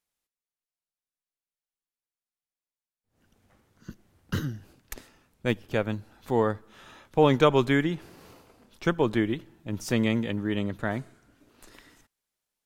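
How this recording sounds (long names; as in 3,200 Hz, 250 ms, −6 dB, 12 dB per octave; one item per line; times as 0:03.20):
background noise floor −95 dBFS
spectral slope −5.5 dB per octave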